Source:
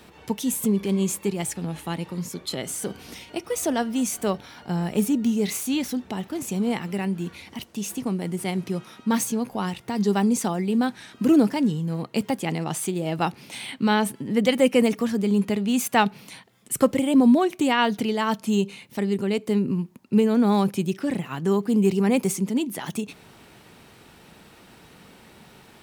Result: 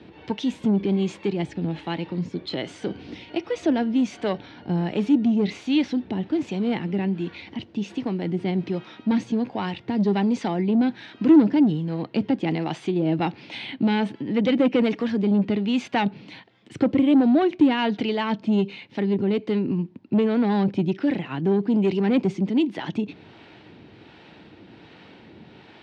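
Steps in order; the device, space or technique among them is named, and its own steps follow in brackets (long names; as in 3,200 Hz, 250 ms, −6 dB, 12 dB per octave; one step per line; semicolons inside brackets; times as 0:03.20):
guitar amplifier with harmonic tremolo (two-band tremolo in antiphase 1.3 Hz, depth 50%, crossover 490 Hz; soft clipping −19.5 dBFS, distortion −13 dB; loudspeaker in its box 78–4,100 Hz, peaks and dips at 100 Hz +5 dB, 310 Hz +8 dB, 1,200 Hz −6 dB)
level +4 dB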